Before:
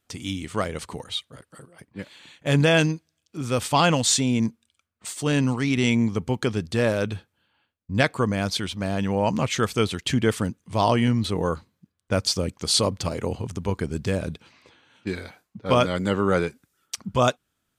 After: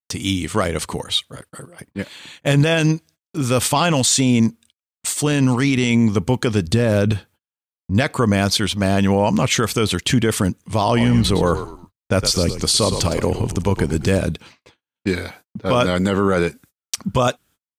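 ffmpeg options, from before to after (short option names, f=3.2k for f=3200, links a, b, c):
-filter_complex "[0:a]asettb=1/sr,asplit=3[a][b][c];[a]atrim=end=6.674[d];[b]atrim=start=6.67:end=7.12,asetpts=PTS-STARTPTS,afade=t=in:d=0.004:c=qsin,afade=t=out:st=0.446:d=0.004:c=qsin,lowshelf=f=370:g=8.5[e];[c]atrim=start=7.116[f];[d][e]acrossfade=d=0.004:c1=hsin:c2=qsin[g];[g][f]acrossfade=d=0.004:c1=qsin:c2=hsin,asplit=3[h][i][j];[h]afade=t=out:st=10.96:d=0.02[k];[i]asplit=4[l][m][n][o];[m]adelay=110,afreqshift=-58,volume=-12dB[p];[n]adelay=220,afreqshift=-116,volume=-21.6dB[q];[o]adelay=330,afreqshift=-174,volume=-31.3dB[r];[l][p][q][r]amix=inputs=4:normalize=0,afade=t=in:st=10.96:d=0.02,afade=t=out:st=14.18:d=0.02[s];[j]afade=t=in:st=14.18:d=0.02[t];[k][s][t]amix=inputs=3:normalize=0,agate=range=-45dB:threshold=-52dB:ratio=16:detection=peak,highshelf=f=9k:g=6.5,alimiter=level_in=15dB:limit=-1dB:release=50:level=0:latency=1,volume=-6dB"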